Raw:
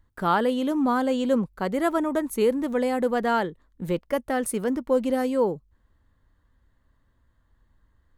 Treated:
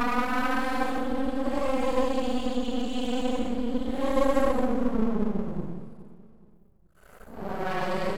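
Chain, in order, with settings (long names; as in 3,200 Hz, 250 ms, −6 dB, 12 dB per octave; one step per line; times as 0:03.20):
extreme stretch with random phases 11×, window 0.05 s, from 0:00.93
gain on a spectral selection 0:06.57–0:07.67, 790–5,800 Hz −8 dB
half-wave rectification
on a send: repeating echo 421 ms, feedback 35%, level −16 dB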